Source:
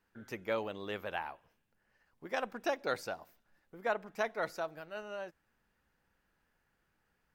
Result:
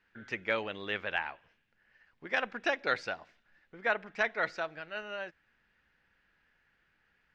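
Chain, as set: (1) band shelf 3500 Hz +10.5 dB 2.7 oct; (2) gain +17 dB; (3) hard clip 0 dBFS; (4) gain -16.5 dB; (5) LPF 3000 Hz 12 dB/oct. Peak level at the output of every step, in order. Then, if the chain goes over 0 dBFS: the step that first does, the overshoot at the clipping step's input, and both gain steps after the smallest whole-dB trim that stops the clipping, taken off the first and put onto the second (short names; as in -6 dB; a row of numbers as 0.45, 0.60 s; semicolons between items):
-13.0, +4.0, 0.0, -16.5, -16.0 dBFS; step 2, 4.0 dB; step 2 +13 dB, step 4 -12.5 dB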